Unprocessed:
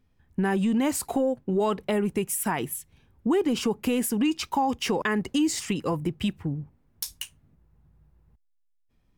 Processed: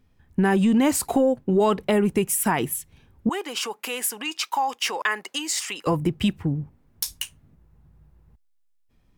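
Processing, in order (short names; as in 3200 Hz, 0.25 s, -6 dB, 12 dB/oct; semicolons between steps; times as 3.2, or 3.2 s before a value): 3.29–5.87 HPF 840 Hz 12 dB/oct; gain +5 dB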